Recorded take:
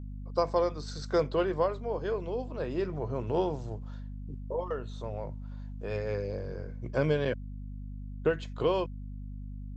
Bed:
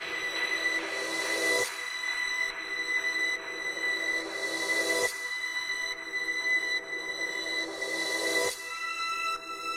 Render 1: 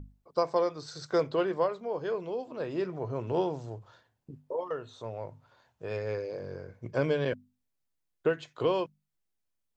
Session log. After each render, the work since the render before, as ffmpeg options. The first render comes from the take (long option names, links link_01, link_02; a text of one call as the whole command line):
ffmpeg -i in.wav -af "bandreject=frequency=50:width_type=h:width=6,bandreject=frequency=100:width_type=h:width=6,bandreject=frequency=150:width_type=h:width=6,bandreject=frequency=200:width_type=h:width=6,bandreject=frequency=250:width_type=h:width=6" out.wav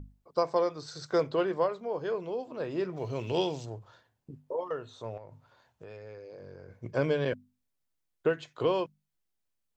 ffmpeg -i in.wav -filter_complex "[0:a]asplit=3[link_01][link_02][link_03];[link_01]afade=type=out:start_time=2.96:duration=0.02[link_04];[link_02]highshelf=frequency=2000:width_type=q:width=1.5:gain=10.5,afade=type=in:start_time=2.96:duration=0.02,afade=type=out:start_time=3.64:duration=0.02[link_05];[link_03]afade=type=in:start_time=3.64:duration=0.02[link_06];[link_04][link_05][link_06]amix=inputs=3:normalize=0,asettb=1/sr,asplit=3[link_07][link_08][link_09];[link_07]atrim=end=5.174[link_10];[link_08]atrim=start=5.17:end=6.71,asetpts=PTS-STARTPTS,afade=type=in:duration=0.004:curve=qsin,afade=type=out:start_time=1.536:duration=0.004:curve=qsin,acompressor=threshold=-43dB:ratio=6:attack=3.2:release=140:knee=1:detection=peak[link_11];[link_09]atrim=start=6.706[link_12];[link_10][link_11]acrossfade=duration=0.004:curve1=hsin:curve2=qsin[link_13];[link_13][link_12]acrossfade=duration=0.004:curve1=qsin:curve2=hsin" out.wav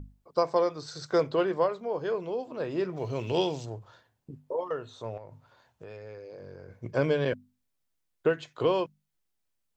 ffmpeg -i in.wav -af "volume=2dB" out.wav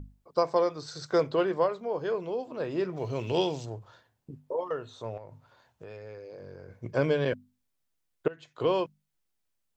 ffmpeg -i in.wav -filter_complex "[0:a]asplit=2[link_01][link_02];[link_01]atrim=end=8.28,asetpts=PTS-STARTPTS,afade=type=out:start_time=8.276:duration=0.004:curve=hsin:silence=0.0749894[link_03];[link_02]atrim=start=8.28,asetpts=PTS-STARTPTS,afade=type=in:duration=0.45:silence=0.0749894[link_04];[link_03][link_04]concat=n=2:v=0:a=1" out.wav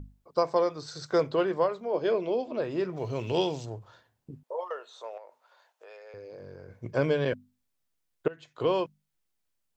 ffmpeg -i in.wav -filter_complex "[0:a]asplit=3[link_01][link_02][link_03];[link_01]afade=type=out:start_time=1.92:duration=0.02[link_04];[link_02]highpass=150,equalizer=frequency=230:width_type=q:width=4:gain=7,equalizer=frequency=360:width_type=q:width=4:gain=6,equalizer=frequency=620:width_type=q:width=4:gain=9,equalizer=frequency=2300:width_type=q:width=4:gain=8,equalizer=frequency=3400:width_type=q:width=4:gain=6,equalizer=frequency=4900:width_type=q:width=4:gain=5,lowpass=frequency=7100:width=0.5412,lowpass=frequency=7100:width=1.3066,afade=type=in:start_time=1.92:duration=0.02,afade=type=out:start_time=2.6:duration=0.02[link_05];[link_03]afade=type=in:start_time=2.6:duration=0.02[link_06];[link_04][link_05][link_06]amix=inputs=3:normalize=0,asettb=1/sr,asplit=3[link_07][link_08][link_09];[link_07]atrim=end=4.434[link_10];[link_08]atrim=start=4.43:end=6.14,asetpts=PTS-STARTPTS,afade=type=in:duration=0.004:curve=qsin,afade=type=out:start_time=1.706:duration=0.004:curve=qsin,highpass=frequency=510:width=0.5412,highpass=frequency=510:width=1.3066[link_11];[link_09]atrim=start=6.136[link_12];[link_10][link_11]acrossfade=duration=0.004:curve1=hsin:curve2=qsin[link_13];[link_13][link_12]acrossfade=duration=0.004:curve1=qsin:curve2=hsin" out.wav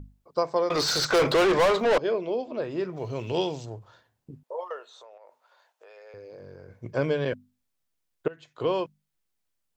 ffmpeg -i in.wav -filter_complex "[0:a]asettb=1/sr,asplit=3[link_01][link_02][link_03];[link_01]atrim=end=0.704[link_04];[link_02]atrim=start=0.7:end=1.98,asetpts=PTS-STARTPTS,afade=type=in:duration=0.004:curve=qsin,afade=type=out:start_time=1.276:duration=0.004:curve=qsin,asplit=2[link_05][link_06];[link_06]highpass=frequency=720:poles=1,volume=32dB,asoftclip=type=tanh:threshold=-14dB[link_07];[link_05][link_07]amix=inputs=2:normalize=0,lowpass=frequency=4500:poles=1,volume=-6dB[link_08];[link_03]atrim=start=1.976[link_09];[link_04][link_08]acrossfade=duration=0.004:curve1=hsin:curve2=qsin[link_10];[link_10][link_09]acrossfade=duration=0.004:curve1=qsin:curve2=hsin,asettb=1/sr,asplit=3[link_11][link_12][link_13];[link_11]atrim=end=4.934[link_14];[link_12]atrim=start=4.93:end=5.97,asetpts=PTS-STARTPTS,afade=type=in:duration=0.004:curve=qsin,afade=type=out:start_time=1.036:duration=0.004:curve=qsin,acompressor=threshold=-46dB:ratio=5:attack=3.2:release=140:knee=1:detection=peak[link_15];[link_13]atrim=start=5.966[link_16];[link_14][link_15]acrossfade=duration=0.004:curve1=hsin:curve2=qsin[link_17];[link_17][link_16]acrossfade=duration=0.004:curve1=qsin:curve2=hsin" out.wav